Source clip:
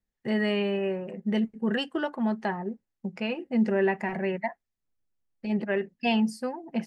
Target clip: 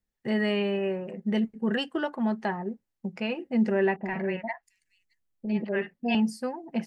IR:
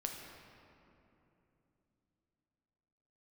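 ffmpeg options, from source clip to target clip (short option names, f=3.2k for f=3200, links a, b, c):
-filter_complex "[0:a]asettb=1/sr,asplit=3[a][b][c];[a]atrim=end=3.964[d];[b]atrim=start=3.96:end=6.15,asetpts=PTS-STARTPTS,afade=t=in:d=0.004:c=qsin,afade=t=out:st=2.186:d=0.004:c=qsin,acrossover=split=700|5500[e][f][g];[f]adelay=50[h];[g]adelay=670[i];[e][h][i]amix=inputs=3:normalize=0,atrim=end_sample=96579[j];[c]atrim=start=6.146[k];[d][j]acrossfade=d=0.004:c1=hsin:c2=qsin[l];[l][k]acrossfade=d=0.004:c1=qsin:c2=hsin"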